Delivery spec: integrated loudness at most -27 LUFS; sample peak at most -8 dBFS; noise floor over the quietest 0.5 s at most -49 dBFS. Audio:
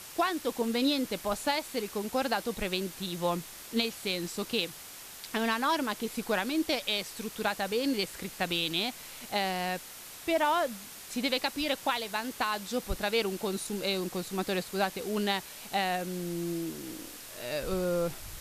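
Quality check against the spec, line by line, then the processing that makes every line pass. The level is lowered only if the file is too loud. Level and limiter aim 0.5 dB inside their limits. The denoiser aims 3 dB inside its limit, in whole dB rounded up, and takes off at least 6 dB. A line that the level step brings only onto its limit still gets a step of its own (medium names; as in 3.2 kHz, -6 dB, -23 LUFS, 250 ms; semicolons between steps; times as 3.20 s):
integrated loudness -31.5 LUFS: pass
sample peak -12.5 dBFS: pass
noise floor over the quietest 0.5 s -46 dBFS: fail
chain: noise reduction 6 dB, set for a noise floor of -46 dBFS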